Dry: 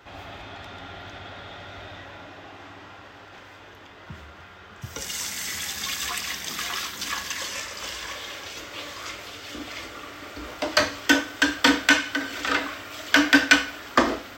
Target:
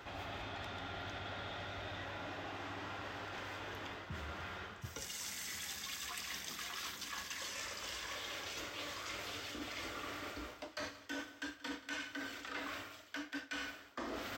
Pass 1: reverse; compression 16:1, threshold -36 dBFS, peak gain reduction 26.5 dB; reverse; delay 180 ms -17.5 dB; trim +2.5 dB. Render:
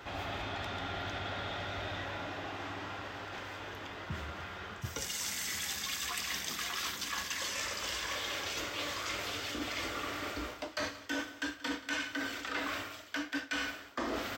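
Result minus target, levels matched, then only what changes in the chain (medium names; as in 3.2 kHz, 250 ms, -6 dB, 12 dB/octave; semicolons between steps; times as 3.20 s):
compression: peak gain reduction -7 dB
change: compression 16:1, threshold -43.5 dBFS, peak gain reduction 33.5 dB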